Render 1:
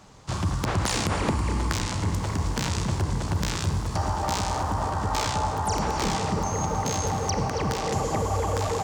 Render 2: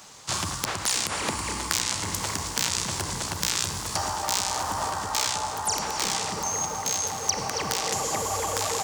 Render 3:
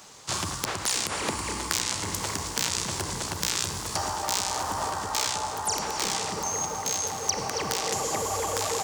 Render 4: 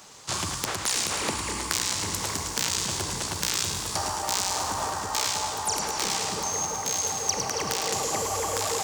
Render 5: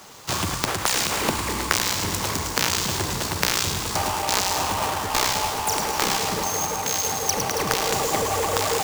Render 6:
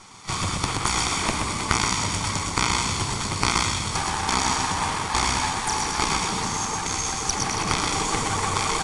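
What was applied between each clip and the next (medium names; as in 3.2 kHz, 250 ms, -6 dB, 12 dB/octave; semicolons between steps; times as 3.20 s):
tilt EQ +3.5 dB/octave; gain riding within 4 dB 0.5 s; trim -1.5 dB
peaking EQ 400 Hz +3.5 dB 0.88 oct; trim -1.5 dB
feedback echo behind a high-pass 107 ms, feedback 61%, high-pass 1.9 kHz, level -6 dB
square wave that keeps the level
comb filter that takes the minimum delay 0.88 ms; delay 126 ms -4.5 dB; AAC 48 kbps 22.05 kHz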